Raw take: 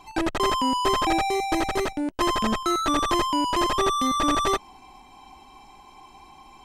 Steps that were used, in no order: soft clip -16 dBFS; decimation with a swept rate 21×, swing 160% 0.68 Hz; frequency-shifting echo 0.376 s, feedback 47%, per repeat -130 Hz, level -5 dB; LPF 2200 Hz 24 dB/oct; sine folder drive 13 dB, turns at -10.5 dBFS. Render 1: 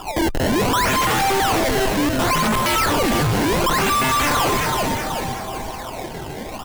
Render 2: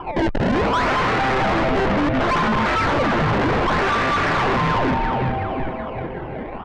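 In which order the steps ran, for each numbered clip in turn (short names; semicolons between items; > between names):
LPF > sine folder > decimation with a swept rate > frequency-shifting echo > soft clip; decimation with a swept rate > frequency-shifting echo > sine folder > LPF > soft clip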